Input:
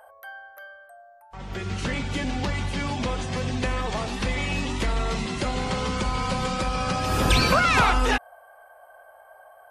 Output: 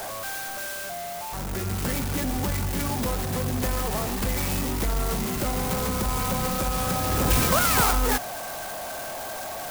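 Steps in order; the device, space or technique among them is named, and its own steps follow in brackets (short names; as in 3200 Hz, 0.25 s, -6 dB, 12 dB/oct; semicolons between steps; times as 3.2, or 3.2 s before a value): early CD player with a faulty converter (zero-crossing step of -25.5 dBFS; clock jitter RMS 0.095 ms); gain -3 dB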